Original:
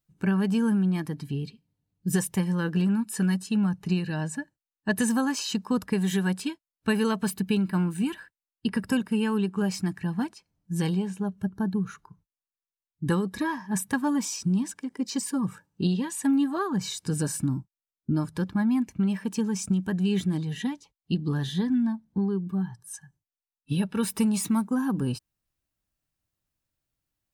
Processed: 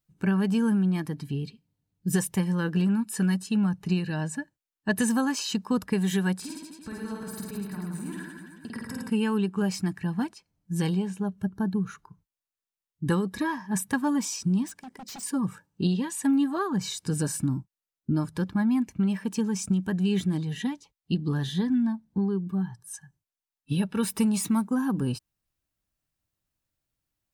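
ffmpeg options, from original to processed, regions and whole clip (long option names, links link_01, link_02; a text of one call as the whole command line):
ffmpeg -i in.wav -filter_complex "[0:a]asettb=1/sr,asplit=3[link_01][link_02][link_03];[link_01]atrim=end=6.374[link_04];[link_02]atrim=start=6.37:end=9.1,asetpts=PTS-STARTPTS,afade=type=in:duration=0.004:curve=qsin,afade=type=out:start_time=2.726:duration=0.004:curve=qsin,equalizer=frequency=2900:width_type=o:width=0.39:gain=-10.5,acompressor=threshold=-35dB:ratio=12:attack=3.2:release=140:knee=1:detection=peak,aecho=1:1:50|107.5|173.6|249.7|337.1|437.7|553.3|686.3:0.794|0.631|0.501|0.398|0.316|0.251|0.2|0.158,atrim=end_sample=120393[link_05];[link_03]atrim=start=9.096[link_06];[link_04][link_05]acrossfade=duration=0.004:curve1=hsin:curve2=qsin[link_07];[link_07][link_06]acrossfade=duration=0.004:curve1=qsin:curve2=hsin,asettb=1/sr,asplit=3[link_08][link_09][link_10];[link_08]atrim=end=14.664[link_11];[link_09]atrim=start=14.66:end=15.23,asetpts=PTS-STARTPTS,afade=type=in:duration=0.004:curve=qsin,afade=type=out:start_time=0.566:duration=0.004:curve=qsin,acompressor=threshold=-32dB:ratio=4:attack=3.2:release=140:knee=1:detection=peak,aeval=exprs='0.0168*(abs(mod(val(0)/0.0168+3,4)-2)-1)':channel_layout=same[link_12];[link_10]atrim=start=15.226[link_13];[link_11][link_12]acrossfade=duration=0.004:curve1=hsin:curve2=qsin[link_14];[link_14][link_13]acrossfade=duration=0.004:curve1=qsin:curve2=hsin" out.wav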